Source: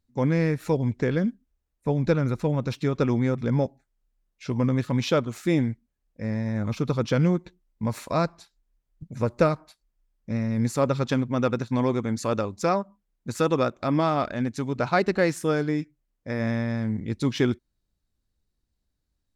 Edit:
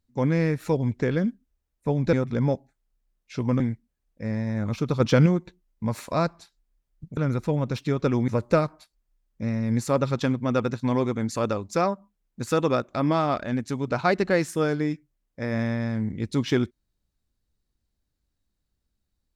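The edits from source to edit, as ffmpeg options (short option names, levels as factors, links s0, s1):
-filter_complex "[0:a]asplit=7[s0][s1][s2][s3][s4][s5][s6];[s0]atrim=end=2.132[s7];[s1]atrim=start=3.238:end=4.712[s8];[s2]atrim=start=5.588:end=6.992[s9];[s3]atrim=start=6.988:end=7.252,asetpts=PTS-STARTPTS,volume=1.68[s10];[s4]atrim=start=7.248:end=9.162[s11];[s5]atrim=start=2.128:end=3.242[s12];[s6]atrim=start=9.158[s13];[s7][s8]acrossfade=d=0.004:c1=hsin:c2=hsin[s14];[s14][s9]acrossfade=d=0.004:c1=hsin:c2=hsin[s15];[s15][s10]acrossfade=d=0.004:c1=hsin:c2=hsin[s16];[s16][s11]acrossfade=d=0.004:c1=hsin:c2=hsin[s17];[s17][s12]acrossfade=d=0.004:c1=hsin:c2=hsin[s18];[s18][s13]acrossfade=d=0.004:c1=hsin:c2=hsin"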